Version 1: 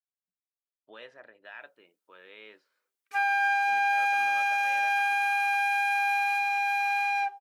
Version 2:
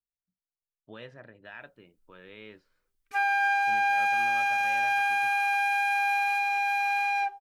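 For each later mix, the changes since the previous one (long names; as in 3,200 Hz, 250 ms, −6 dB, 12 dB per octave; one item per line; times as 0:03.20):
master: remove high-pass filter 470 Hz 12 dB per octave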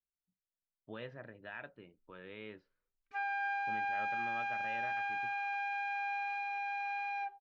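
background −10.0 dB
master: add high-frequency loss of the air 180 metres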